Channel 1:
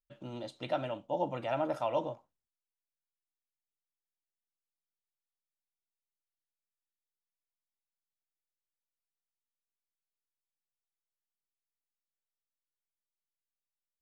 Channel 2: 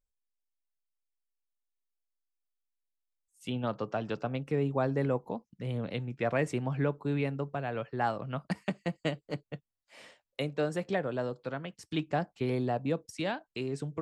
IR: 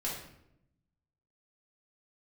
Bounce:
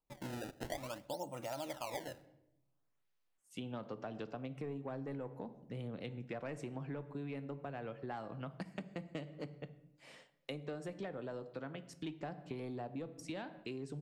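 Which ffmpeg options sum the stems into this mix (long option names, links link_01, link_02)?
-filter_complex "[0:a]acrusher=samples=23:mix=1:aa=0.000001:lfo=1:lforange=36.8:lforate=0.55,volume=2dB,asplit=2[link_01][link_02];[link_02]volume=-23.5dB[link_03];[1:a]equalizer=frequency=310:width=1.5:gain=3.5,asoftclip=type=tanh:threshold=-20dB,adelay=100,volume=-6.5dB,asplit=2[link_04][link_05];[link_05]volume=-14dB[link_06];[2:a]atrim=start_sample=2205[link_07];[link_03][link_06]amix=inputs=2:normalize=0[link_08];[link_08][link_07]afir=irnorm=-1:irlink=0[link_09];[link_01][link_04][link_09]amix=inputs=3:normalize=0,acompressor=threshold=-40dB:ratio=6"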